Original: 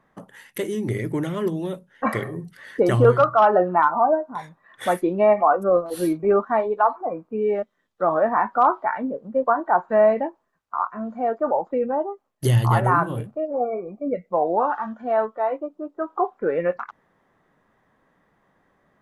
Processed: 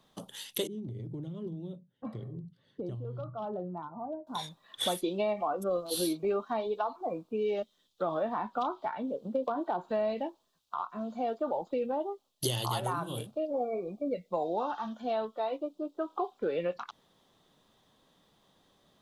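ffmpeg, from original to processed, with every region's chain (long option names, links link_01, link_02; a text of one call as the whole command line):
ffmpeg -i in.wav -filter_complex "[0:a]asettb=1/sr,asplit=3[link_01][link_02][link_03];[link_01]atrim=end=0.674[link_04];[link_02]atrim=start=0.67:end=4.27,asetpts=PTS-STARTPTS,afade=type=in:duration=0.004:curve=qsin,afade=type=out:start_time=3.596:duration=0.004:curve=qsin,bandpass=frequency=120:width_type=q:width=1.3,acompressor=threshold=-28dB:ratio=6:attack=3.2:release=140:knee=1:detection=peak[link_05];[link_03]atrim=start=4.266[link_06];[link_04][link_05]acrossfade=duration=0.004:curve1=hsin:curve2=qsin[link_07];[link_07][link_06]acrossfade=duration=0.004:curve1=qsin:curve2=hsin,asettb=1/sr,asplit=3[link_08][link_09][link_10];[link_08]atrim=end=9.254[link_11];[link_09]atrim=start=9.25:end=9.9,asetpts=PTS-STARTPTS,afade=type=in:duration=0.004:curve=qsin,afade=type=out:start_time=0.646:duration=0.004:curve=qsin,equalizer=frequency=330:width_type=o:width=2.4:gain=7.5,acompressor=threshold=-16dB:ratio=2.5:attack=3.2:release=140:knee=1:detection=peak[link_12];[link_10]atrim=start=9.896[link_13];[link_11][link_12]acrossfade=duration=0.004:curve1=hsin:curve2=qsin[link_14];[link_14][link_13]acrossfade=duration=0.004:curve1=qsin:curve2=hsin,acrossover=split=340|1900[link_15][link_16][link_17];[link_15]acompressor=threshold=-36dB:ratio=4[link_18];[link_16]acompressor=threshold=-28dB:ratio=4[link_19];[link_17]acompressor=threshold=-44dB:ratio=4[link_20];[link_18][link_19][link_20]amix=inputs=3:normalize=0,highshelf=frequency=2600:width_type=q:width=3:gain=11,volume=-3dB" out.wav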